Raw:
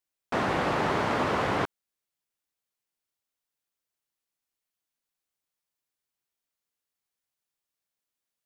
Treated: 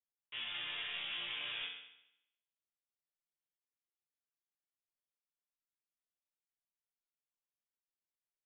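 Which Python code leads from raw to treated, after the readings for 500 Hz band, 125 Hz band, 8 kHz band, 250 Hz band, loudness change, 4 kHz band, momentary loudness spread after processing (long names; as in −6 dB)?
−32.5 dB, −33.0 dB, below −30 dB, −34.0 dB, −12.5 dB, +1.0 dB, 9 LU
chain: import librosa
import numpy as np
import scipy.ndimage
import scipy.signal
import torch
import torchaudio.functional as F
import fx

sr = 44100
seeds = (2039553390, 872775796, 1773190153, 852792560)

y = fx.freq_invert(x, sr, carrier_hz=3600)
y = fx.resonator_bank(y, sr, root=46, chord='major', decay_s=0.79)
y = y * 10.0 ** (4.0 / 20.0)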